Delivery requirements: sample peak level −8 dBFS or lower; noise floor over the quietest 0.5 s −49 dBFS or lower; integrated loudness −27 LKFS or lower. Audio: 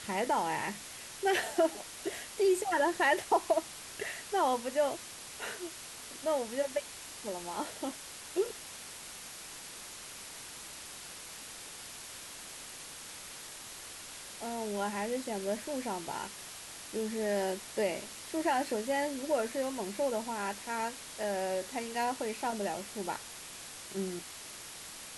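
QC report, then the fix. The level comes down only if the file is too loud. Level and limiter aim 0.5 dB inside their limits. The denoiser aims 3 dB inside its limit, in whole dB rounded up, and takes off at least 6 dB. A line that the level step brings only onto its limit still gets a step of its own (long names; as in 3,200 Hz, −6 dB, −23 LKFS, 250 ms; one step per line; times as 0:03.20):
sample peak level −16.5 dBFS: in spec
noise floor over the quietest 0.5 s −47 dBFS: out of spec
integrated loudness −35.5 LKFS: in spec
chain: broadband denoise 6 dB, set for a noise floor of −47 dBFS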